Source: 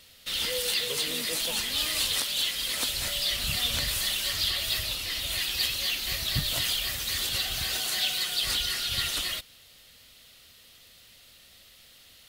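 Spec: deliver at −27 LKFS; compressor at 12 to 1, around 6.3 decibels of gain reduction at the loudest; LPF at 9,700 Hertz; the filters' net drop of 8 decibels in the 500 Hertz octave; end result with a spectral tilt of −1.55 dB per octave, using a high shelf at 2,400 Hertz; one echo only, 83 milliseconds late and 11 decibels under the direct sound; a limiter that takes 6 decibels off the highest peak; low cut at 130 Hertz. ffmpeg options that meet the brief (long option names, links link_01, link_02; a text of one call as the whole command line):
ffmpeg -i in.wav -af "highpass=130,lowpass=9700,equalizer=frequency=500:width_type=o:gain=-9,highshelf=frequency=2400:gain=-3,acompressor=threshold=-32dB:ratio=12,alimiter=level_in=3dB:limit=-24dB:level=0:latency=1,volume=-3dB,aecho=1:1:83:0.282,volume=7.5dB" out.wav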